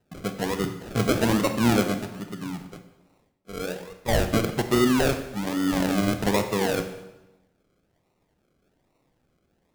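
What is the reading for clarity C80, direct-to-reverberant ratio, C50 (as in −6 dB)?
11.5 dB, 7.5 dB, 9.5 dB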